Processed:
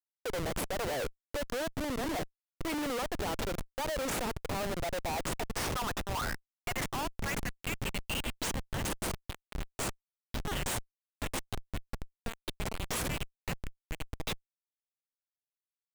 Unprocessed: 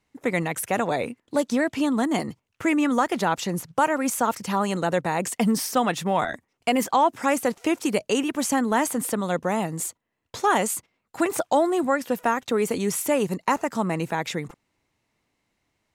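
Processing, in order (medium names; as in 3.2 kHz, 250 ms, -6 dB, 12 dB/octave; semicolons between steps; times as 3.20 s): high-pass sweep 500 Hz -> 3.1 kHz, 4.27–8.16 s; Schmitt trigger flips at -26.5 dBFS; trim -7 dB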